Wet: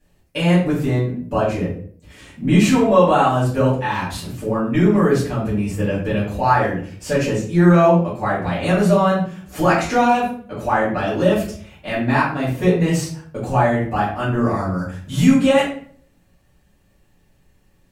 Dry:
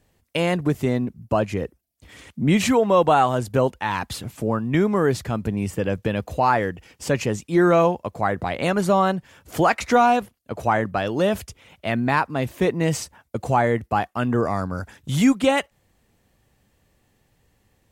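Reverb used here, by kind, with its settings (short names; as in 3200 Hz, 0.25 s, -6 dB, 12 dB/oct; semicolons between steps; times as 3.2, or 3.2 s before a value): shoebox room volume 60 m³, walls mixed, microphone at 2.4 m; gain -8.5 dB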